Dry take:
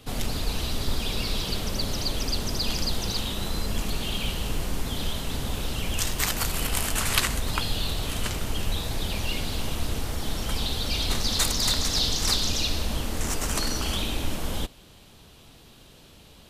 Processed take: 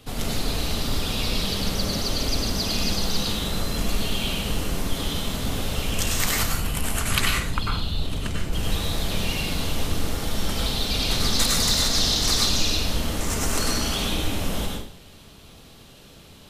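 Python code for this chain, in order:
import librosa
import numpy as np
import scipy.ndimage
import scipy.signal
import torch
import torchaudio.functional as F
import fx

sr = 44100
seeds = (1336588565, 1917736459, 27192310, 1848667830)

y = fx.envelope_sharpen(x, sr, power=1.5, at=(6.42, 8.53))
y = fx.rev_plate(y, sr, seeds[0], rt60_s=0.55, hf_ratio=0.85, predelay_ms=85, drr_db=-1.5)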